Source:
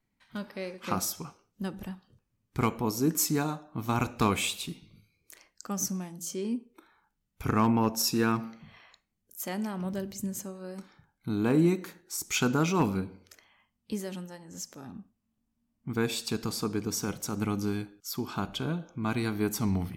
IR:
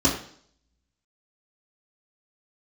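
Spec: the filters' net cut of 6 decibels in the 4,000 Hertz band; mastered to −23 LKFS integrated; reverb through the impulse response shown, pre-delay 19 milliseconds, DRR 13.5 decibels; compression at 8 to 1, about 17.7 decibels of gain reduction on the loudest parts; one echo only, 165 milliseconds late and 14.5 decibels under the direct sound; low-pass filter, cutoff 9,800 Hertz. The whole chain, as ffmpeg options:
-filter_complex "[0:a]lowpass=9800,equalizer=frequency=4000:width_type=o:gain=-8.5,acompressor=threshold=-39dB:ratio=8,aecho=1:1:165:0.188,asplit=2[link_01][link_02];[1:a]atrim=start_sample=2205,adelay=19[link_03];[link_02][link_03]afir=irnorm=-1:irlink=0,volume=-28.5dB[link_04];[link_01][link_04]amix=inputs=2:normalize=0,volume=20dB"

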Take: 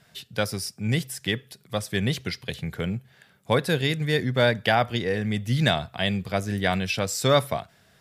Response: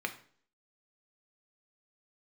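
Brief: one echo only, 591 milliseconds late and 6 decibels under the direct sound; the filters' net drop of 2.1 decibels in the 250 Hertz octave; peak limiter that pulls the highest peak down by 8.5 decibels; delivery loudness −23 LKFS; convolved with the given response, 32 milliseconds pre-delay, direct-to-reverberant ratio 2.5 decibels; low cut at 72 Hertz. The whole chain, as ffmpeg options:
-filter_complex "[0:a]highpass=72,equalizer=frequency=250:width_type=o:gain=-3,alimiter=limit=-14.5dB:level=0:latency=1,aecho=1:1:591:0.501,asplit=2[link_01][link_02];[1:a]atrim=start_sample=2205,adelay=32[link_03];[link_02][link_03]afir=irnorm=-1:irlink=0,volume=-7dB[link_04];[link_01][link_04]amix=inputs=2:normalize=0,volume=3.5dB"

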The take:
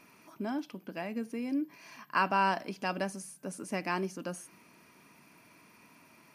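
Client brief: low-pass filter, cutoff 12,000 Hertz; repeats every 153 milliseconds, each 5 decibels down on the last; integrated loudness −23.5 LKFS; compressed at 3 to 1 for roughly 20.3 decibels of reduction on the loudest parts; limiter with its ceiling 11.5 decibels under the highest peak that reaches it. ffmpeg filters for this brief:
ffmpeg -i in.wav -af "lowpass=12000,acompressor=threshold=-51dB:ratio=3,alimiter=level_in=19dB:limit=-24dB:level=0:latency=1,volume=-19dB,aecho=1:1:153|306|459|612|765|918|1071:0.562|0.315|0.176|0.0988|0.0553|0.031|0.0173,volume=29.5dB" out.wav

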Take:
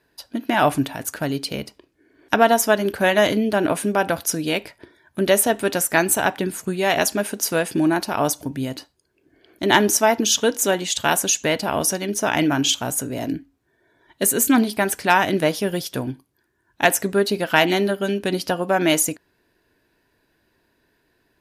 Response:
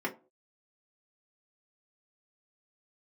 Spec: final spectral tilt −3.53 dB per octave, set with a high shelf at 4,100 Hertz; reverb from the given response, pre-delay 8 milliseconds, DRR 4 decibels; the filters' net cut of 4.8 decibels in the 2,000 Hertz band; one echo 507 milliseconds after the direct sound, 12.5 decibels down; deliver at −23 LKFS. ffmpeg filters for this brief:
-filter_complex "[0:a]equalizer=frequency=2000:width_type=o:gain=-7.5,highshelf=frequency=4100:gain=5,aecho=1:1:507:0.237,asplit=2[link_01][link_02];[1:a]atrim=start_sample=2205,adelay=8[link_03];[link_02][link_03]afir=irnorm=-1:irlink=0,volume=-10.5dB[link_04];[link_01][link_04]amix=inputs=2:normalize=0,volume=-5.5dB"

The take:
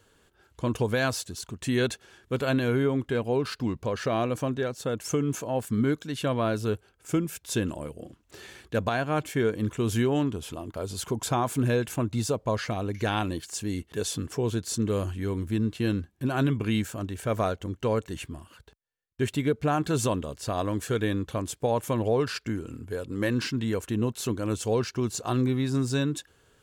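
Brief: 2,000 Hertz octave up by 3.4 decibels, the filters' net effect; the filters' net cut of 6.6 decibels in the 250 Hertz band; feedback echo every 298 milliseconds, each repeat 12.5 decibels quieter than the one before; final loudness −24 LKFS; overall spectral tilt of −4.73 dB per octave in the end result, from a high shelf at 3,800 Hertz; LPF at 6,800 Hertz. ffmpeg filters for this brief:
ffmpeg -i in.wav -af "lowpass=6800,equalizer=frequency=250:width_type=o:gain=-8.5,equalizer=frequency=2000:width_type=o:gain=4,highshelf=frequency=3800:gain=3.5,aecho=1:1:298|596|894:0.237|0.0569|0.0137,volume=6.5dB" out.wav

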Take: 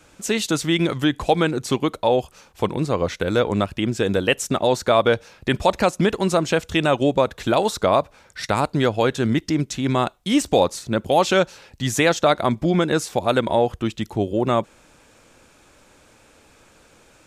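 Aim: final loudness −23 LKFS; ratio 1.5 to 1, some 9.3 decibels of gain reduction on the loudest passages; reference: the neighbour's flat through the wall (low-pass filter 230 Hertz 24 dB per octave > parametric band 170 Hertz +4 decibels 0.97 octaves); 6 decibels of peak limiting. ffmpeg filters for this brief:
ffmpeg -i in.wav -af "acompressor=threshold=-39dB:ratio=1.5,alimiter=limit=-19dB:level=0:latency=1,lowpass=frequency=230:width=0.5412,lowpass=frequency=230:width=1.3066,equalizer=frequency=170:width_type=o:width=0.97:gain=4,volume=12.5dB" out.wav

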